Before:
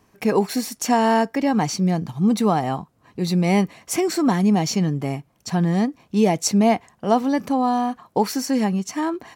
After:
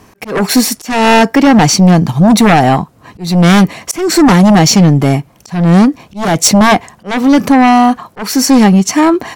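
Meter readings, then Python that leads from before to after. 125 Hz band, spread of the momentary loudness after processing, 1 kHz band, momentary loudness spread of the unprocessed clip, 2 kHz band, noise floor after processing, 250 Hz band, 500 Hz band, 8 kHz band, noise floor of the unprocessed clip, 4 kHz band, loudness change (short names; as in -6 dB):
+13.5 dB, 10 LU, +11.5 dB, 7 LU, +15.5 dB, -44 dBFS, +12.0 dB, +9.0 dB, +14.0 dB, -61 dBFS, +15.0 dB, +12.0 dB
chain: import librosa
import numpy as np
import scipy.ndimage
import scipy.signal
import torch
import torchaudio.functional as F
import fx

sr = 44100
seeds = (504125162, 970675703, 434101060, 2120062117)

y = fx.fold_sine(x, sr, drive_db=11, ceiling_db=-5.0)
y = fx.auto_swell(y, sr, attack_ms=280.0)
y = F.gain(torch.from_numpy(y), 2.5).numpy()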